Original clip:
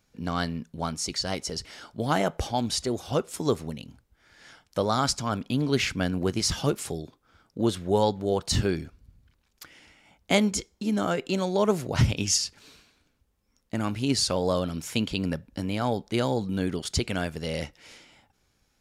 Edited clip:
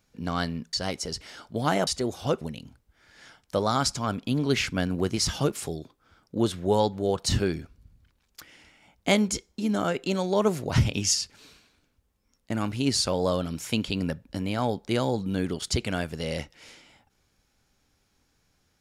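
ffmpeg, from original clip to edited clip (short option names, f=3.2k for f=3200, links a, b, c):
-filter_complex "[0:a]asplit=4[a][b][c][d];[a]atrim=end=0.732[e];[b]atrim=start=1.168:end=2.312[f];[c]atrim=start=2.728:end=3.272[g];[d]atrim=start=3.638[h];[e][f]acrossfade=d=0.004:c1=hsin:c2=hsin[i];[i][g]acrossfade=d=0.004:c1=hsin:c2=hsin[j];[j][h]acrossfade=d=0.004:c1=hsin:c2=hsin"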